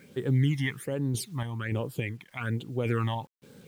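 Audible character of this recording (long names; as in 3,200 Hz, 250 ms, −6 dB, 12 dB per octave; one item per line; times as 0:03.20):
phaser sweep stages 12, 1.2 Hz, lowest notch 430–2,200 Hz
a quantiser's noise floor 10 bits, dither none
sample-and-hold tremolo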